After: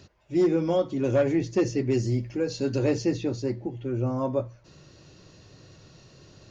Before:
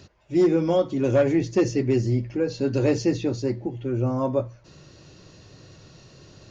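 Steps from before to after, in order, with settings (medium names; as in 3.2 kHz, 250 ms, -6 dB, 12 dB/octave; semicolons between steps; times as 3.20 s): 1.91–2.75 s: treble shelf 6.3 kHz -> 4.7 kHz +11.5 dB; trim -3 dB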